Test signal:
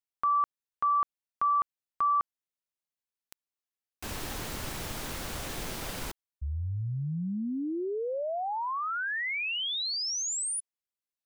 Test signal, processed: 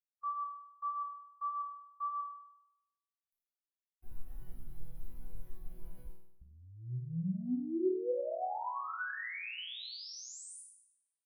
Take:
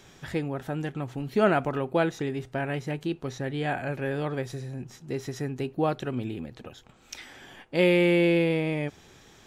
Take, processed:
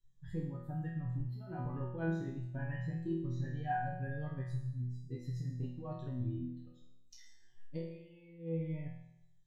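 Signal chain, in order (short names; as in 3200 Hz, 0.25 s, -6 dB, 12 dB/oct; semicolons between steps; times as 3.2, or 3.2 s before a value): per-bin expansion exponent 2; tilt -3.5 dB/oct; negative-ratio compressor -27 dBFS, ratio -0.5; resonator bank B2 sus4, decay 0.82 s; gain +11.5 dB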